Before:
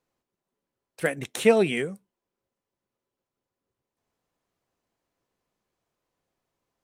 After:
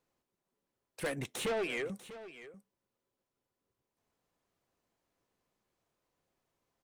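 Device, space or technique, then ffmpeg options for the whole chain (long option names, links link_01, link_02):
saturation between pre-emphasis and de-emphasis: -filter_complex "[0:a]asettb=1/sr,asplit=3[link_01][link_02][link_03];[link_01]atrim=end=1.464[link_04];[link_02]atrim=start=1.46:end=1.9,asetpts=PTS-STARTPTS,afade=type=in:duration=0.004:curve=qsin,afade=type=out:start_time=0.436:duration=0.004:curve=qsin,acrossover=split=370 3600:gain=0.0708 1 0.224[link_05][link_06][link_07];[link_05][link_06][link_07]amix=inputs=3:normalize=0[link_08];[link_03]atrim=start=1.896[link_09];[link_04][link_08]acrossfade=duration=0.004:curve1=hsin:curve2=qsin[link_10];[link_10][link_09]acrossfade=duration=0.004:curve1=qsin:curve2=hsin,highshelf=frequency=7000:gain=11,asoftclip=type=tanh:threshold=-29dB,highshelf=frequency=7000:gain=-11,aecho=1:1:643:0.178,volume=-1.5dB"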